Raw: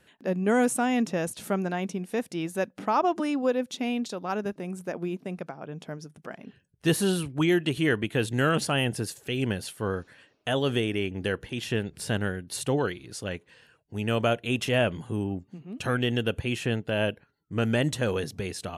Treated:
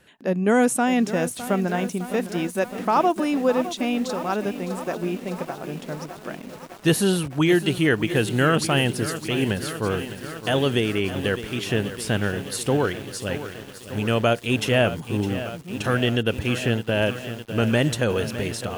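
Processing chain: bit-crushed delay 609 ms, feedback 80%, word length 7-bit, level -12 dB; trim +4.5 dB

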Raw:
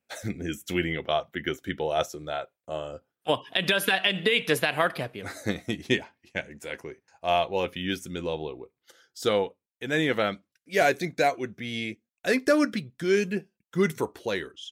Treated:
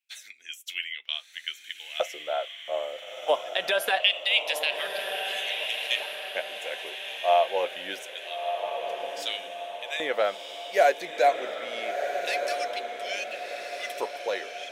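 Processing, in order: LFO high-pass square 0.25 Hz 600–2800 Hz; echo that smears into a reverb 1327 ms, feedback 48%, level -6 dB; trim -3.5 dB

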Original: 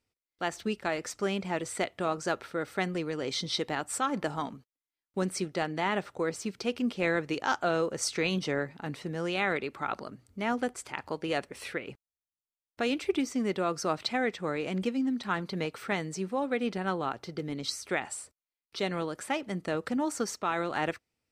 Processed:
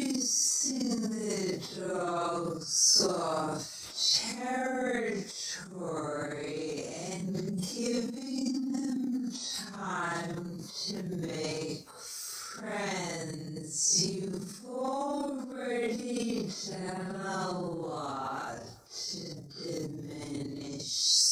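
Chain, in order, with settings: resonant high shelf 4 kHz +11.5 dB, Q 3; Paulstretch 4.7×, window 0.05 s, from 13.20 s; transient shaper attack -4 dB, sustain +11 dB; trim -5 dB

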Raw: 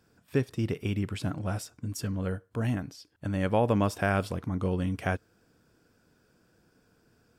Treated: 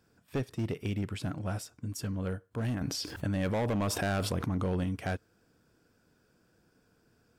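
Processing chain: overload inside the chain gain 24.5 dB; 2.81–4.84 s: level flattener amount 70%; trim -2.5 dB

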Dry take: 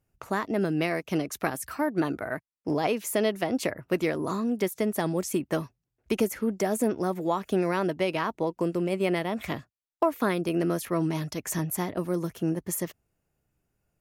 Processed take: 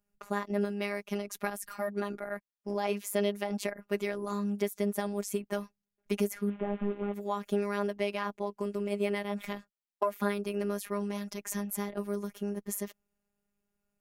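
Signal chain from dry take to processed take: 6.50–7.14 s: one-bit delta coder 16 kbps, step -40.5 dBFS; robot voice 203 Hz; trim -3 dB

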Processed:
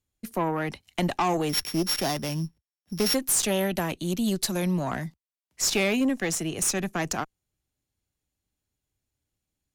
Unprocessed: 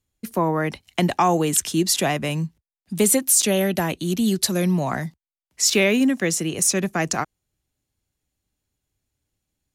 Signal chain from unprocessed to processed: 1.49–3.15 s: sorted samples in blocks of 8 samples; Chebyshev shaper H 5 -22 dB, 6 -20 dB, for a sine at -6 dBFS; trim -7.5 dB

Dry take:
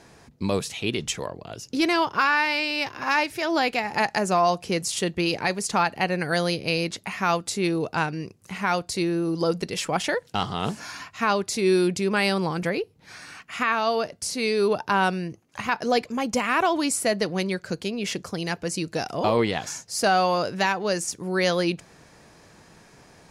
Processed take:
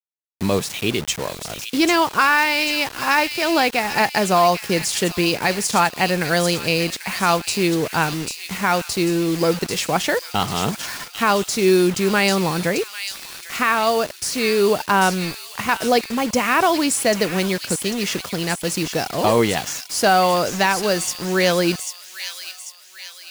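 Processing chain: bit crusher 6-bit; on a send: feedback echo behind a high-pass 793 ms, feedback 47%, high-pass 2.9 kHz, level -4.5 dB; on the sum: trim +5 dB

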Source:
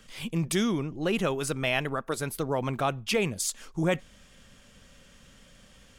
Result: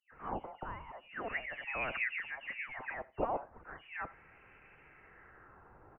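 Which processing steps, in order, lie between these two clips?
peak limiter -24.5 dBFS, peak gain reduction 11.5 dB; phase dispersion highs, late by 130 ms, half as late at 950 Hz; LFO high-pass sine 0.38 Hz 800–2400 Hz; feedback delay 84 ms, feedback 24%, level -22 dB; frequency inversion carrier 3.2 kHz; trim -1 dB

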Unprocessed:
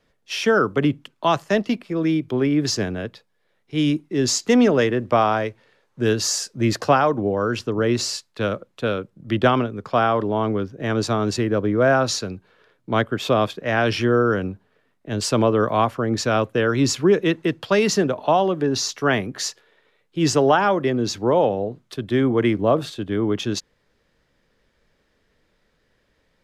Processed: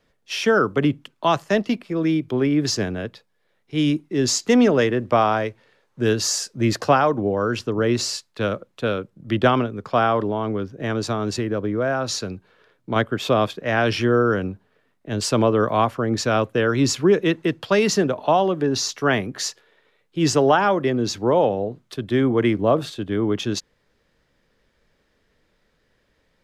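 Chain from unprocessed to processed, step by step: 10.29–12.96 s: compression 2.5:1, threshold -21 dBFS, peak gain reduction 6 dB

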